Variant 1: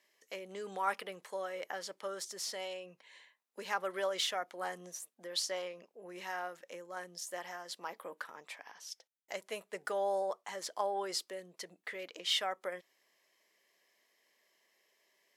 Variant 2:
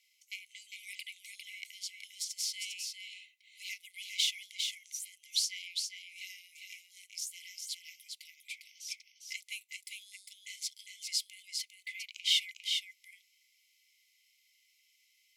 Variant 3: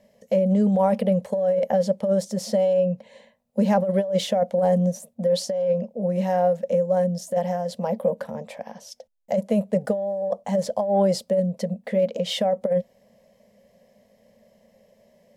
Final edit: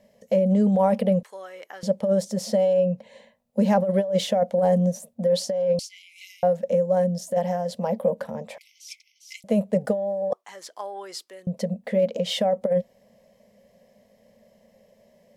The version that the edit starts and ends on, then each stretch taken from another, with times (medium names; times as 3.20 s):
3
1.23–1.83 s: from 1
5.79–6.43 s: from 2
8.58–9.44 s: from 2
10.33–11.47 s: from 1